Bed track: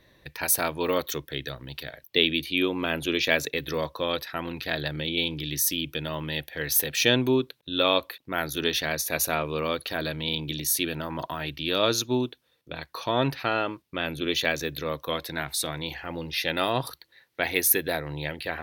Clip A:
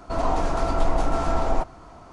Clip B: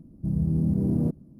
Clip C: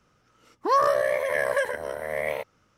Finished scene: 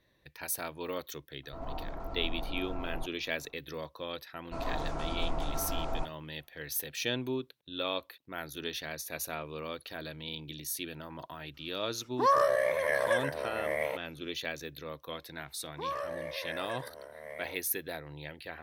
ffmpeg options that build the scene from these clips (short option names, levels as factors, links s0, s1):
-filter_complex "[1:a]asplit=2[s0][s1];[3:a]asplit=2[s2][s3];[0:a]volume=0.266[s4];[s0]lowpass=f=1100:p=1[s5];[s1]agate=range=0.0224:threshold=0.0158:ratio=3:release=100:detection=peak[s6];[s5]atrim=end=2.12,asetpts=PTS-STARTPTS,volume=0.168,afade=t=in:d=0.004:c=hsin,afade=t=out:st=2.116:d=0.004:c=hsin,adelay=1430[s7];[s6]atrim=end=2.12,asetpts=PTS-STARTPTS,volume=0.251,afade=t=in:d=0.004:c=hsin,afade=t=out:st=2.116:d=0.004:c=hsin,adelay=4420[s8];[s2]atrim=end=2.77,asetpts=PTS-STARTPTS,volume=0.631,afade=t=in:d=0.004:c=hsin,afade=t=out:st=2.766:d=0.004:c=hsin,adelay=508914S[s9];[s3]atrim=end=2.77,asetpts=PTS-STARTPTS,volume=0.168,afade=t=in:d=0.004:c=hsin,afade=t=out:st=2.766:d=0.004:c=hsin,adelay=15130[s10];[s4][s7][s8][s9][s10]amix=inputs=5:normalize=0"